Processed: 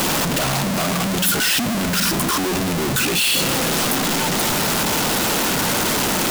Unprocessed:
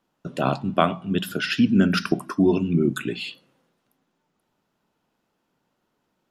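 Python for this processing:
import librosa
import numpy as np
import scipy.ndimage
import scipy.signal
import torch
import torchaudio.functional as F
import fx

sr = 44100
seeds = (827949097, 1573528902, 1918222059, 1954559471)

y = np.sign(x) * np.sqrt(np.mean(np.square(x)))
y = fx.high_shelf(y, sr, hz=3500.0, db=6.5)
y = F.gain(torch.from_numpy(y), 4.0).numpy()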